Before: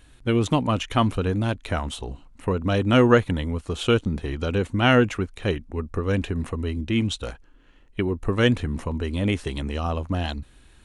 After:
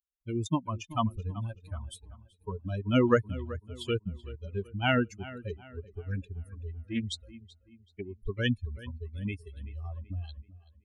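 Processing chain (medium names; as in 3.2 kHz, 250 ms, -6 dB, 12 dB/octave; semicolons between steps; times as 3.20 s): expander on every frequency bin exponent 3; filtered feedback delay 381 ms, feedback 41%, low-pass 4 kHz, level -17 dB; 5.96–8.03 s: loudspeaker Doppler distortion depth 0.12 ms; trim -3 dB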